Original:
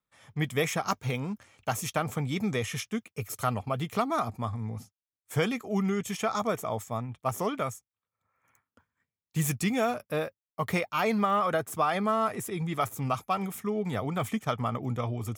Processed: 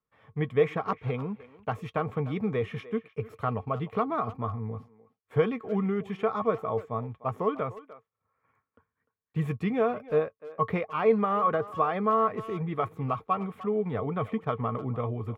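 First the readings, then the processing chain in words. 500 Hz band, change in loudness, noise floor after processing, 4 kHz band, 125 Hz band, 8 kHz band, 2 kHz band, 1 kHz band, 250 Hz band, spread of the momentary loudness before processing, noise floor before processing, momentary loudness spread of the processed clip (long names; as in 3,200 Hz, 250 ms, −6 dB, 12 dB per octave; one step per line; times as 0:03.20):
+3.5 dB, +1.0 dB, below −85 dBFS, −11.0 dB, 0.0 dB, below −25 dB, −4.5 dB, +0.5 dB, −0.5 dB, 8 LU, below −85 dBFS, 10 LU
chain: high-frequency loss of the air 490 metres
hollow resonant body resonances 450/1,100 Hz, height 12 dB, ringing for 95 ms
far-end echo of a speakerphone 300 ms, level −16 dB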